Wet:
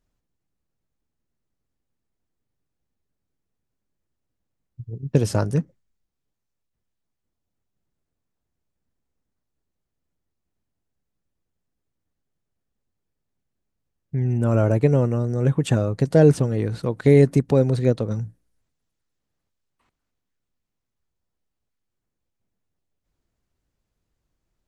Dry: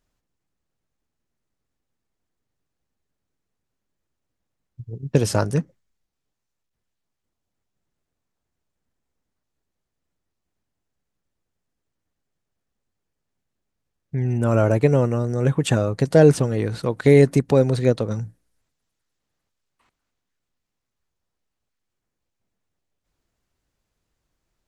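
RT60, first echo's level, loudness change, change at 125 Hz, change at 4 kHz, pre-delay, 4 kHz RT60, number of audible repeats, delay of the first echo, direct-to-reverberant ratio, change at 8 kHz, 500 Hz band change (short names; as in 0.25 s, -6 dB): none, none, -1.0 dB, +0.5 dB, -5.0 dB, none, none, none, none, none, -5.0 dB, -2.0 dB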